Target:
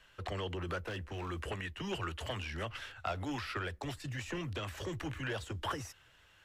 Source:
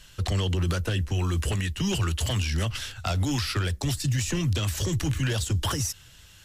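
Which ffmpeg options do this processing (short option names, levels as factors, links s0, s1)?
-filter_complex "[0:a]acrossover=split=340 2600:gain=0.224 1 0.141[s0][s1][s2];[s0][s1][s2]amix=inputs=3:normalize=0,asettb=1/sr,asplit=3[s3][s4][s5];[s3]atrim=end=0.814[s6];[s4]atrim=start=0.81:end=1.29,asetpts=PTS-STARTPTS,afade=t=in:d=0.004:c=qsin,afade=t=out:st=0.476:d=0.004:c=qsin,volume=39.8,asoftclip=hard,volume=0.0251[s7];[s5]atrim=start=1.286[s8];[s6][s7]acrossfade=d=0.004:c1=hsin:c2=qsin[s9];[s9][s8]acrossfade=d=0.004:c1=qsin:c2=hsin,volume=0.631"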